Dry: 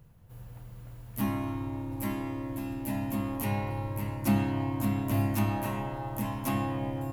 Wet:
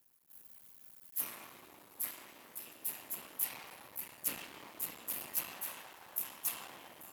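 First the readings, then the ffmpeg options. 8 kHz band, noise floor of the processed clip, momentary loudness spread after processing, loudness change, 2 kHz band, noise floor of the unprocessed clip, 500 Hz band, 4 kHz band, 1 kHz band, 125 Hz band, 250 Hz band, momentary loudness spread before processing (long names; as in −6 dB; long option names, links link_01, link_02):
+4.0 dB, −61 dBFS, 17 LU, −8.0 dB, −8.0 dB, −48 dBFS, −18.5 dB, −2.0 dB, −16.0 dB, −35.5 dB, −29.0 dB, 16 LU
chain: -af "afftfilt=real='hypot(re,im)*cos(2*PI*random(0))':imag='hypot(re,im)*sin(2*PI*random(1))':win_size=512:overlap=0.75,aeval=exprs='max(val(0),0)':channel_layout=same,aderivative,volume=11.5dB"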